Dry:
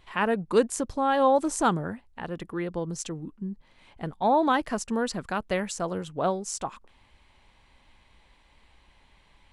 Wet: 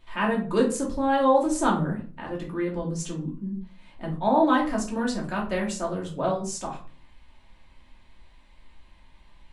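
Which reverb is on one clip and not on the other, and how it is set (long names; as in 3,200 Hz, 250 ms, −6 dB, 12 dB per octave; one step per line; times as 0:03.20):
rectangular room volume 260 cubic metres, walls furnished, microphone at 2.7 metres
level −4.5 dB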